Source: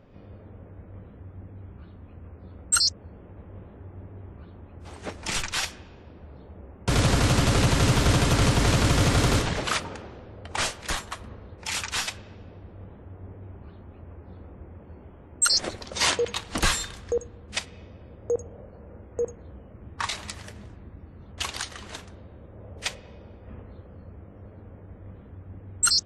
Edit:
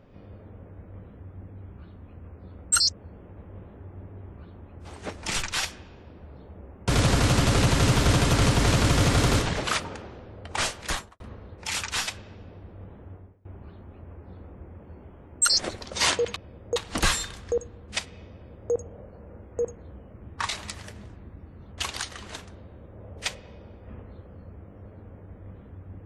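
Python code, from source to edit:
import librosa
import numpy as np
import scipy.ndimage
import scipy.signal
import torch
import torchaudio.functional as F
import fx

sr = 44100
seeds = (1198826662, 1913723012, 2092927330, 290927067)

y = fx.studio_fade_out(x, sr, start_s=10.93, length_s=0.27)
y = fx.edit(y, sr, fx.fade_out_to(start_s=13.14, length_s=0.31, curve='qua', floor_db=-23.5),
    fx.duplicate(start_s=17.93, length_s=0.4, to_s=16.36), tone=tone)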